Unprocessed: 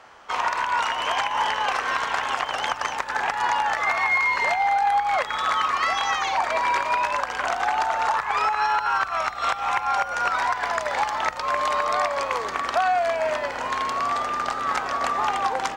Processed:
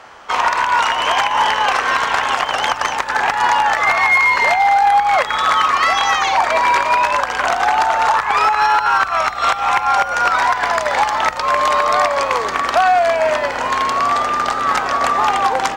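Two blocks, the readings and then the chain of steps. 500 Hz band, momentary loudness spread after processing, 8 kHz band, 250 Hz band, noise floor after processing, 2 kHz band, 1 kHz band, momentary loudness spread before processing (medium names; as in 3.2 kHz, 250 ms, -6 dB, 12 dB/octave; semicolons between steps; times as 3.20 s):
+8.5 dB, 5 LU, +8.5 dB, +8.5 dB, -24 dBFS, +8.0 dB, +8.5 dB, 5 LU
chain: hard clipper -16 dBFS, distortion -23 dB; trim +8.5 dB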